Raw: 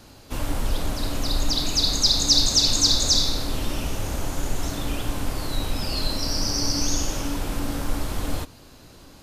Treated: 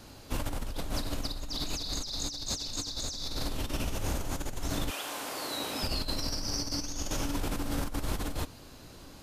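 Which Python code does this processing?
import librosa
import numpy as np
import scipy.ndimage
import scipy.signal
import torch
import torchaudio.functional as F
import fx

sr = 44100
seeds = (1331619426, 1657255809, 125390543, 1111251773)

y = fx.highpass(x, sr, hz=fx.line((4.89, 760.0), (5.82, 250.0)), slope=12, at=(4.89, 5.82), fade=0.02)
y = fx.over_compress(y, sr, threshold_db=-27.0, ratio=-1.0)
y = y * 10.0 ** (-6.0 / 20.0)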